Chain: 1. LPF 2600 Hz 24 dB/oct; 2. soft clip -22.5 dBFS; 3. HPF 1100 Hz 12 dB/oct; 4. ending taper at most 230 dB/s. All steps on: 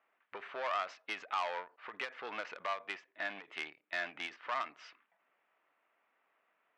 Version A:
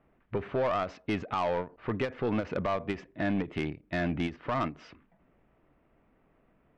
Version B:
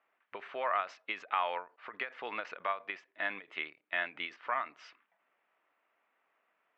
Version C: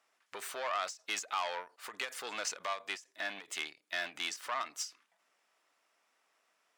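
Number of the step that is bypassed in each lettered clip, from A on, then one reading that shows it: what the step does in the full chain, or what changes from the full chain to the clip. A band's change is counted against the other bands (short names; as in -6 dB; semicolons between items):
3, 250 Hz band +22.0 dB; 2, distortion -11 dB; 1, 8 kHz band +20.5 dB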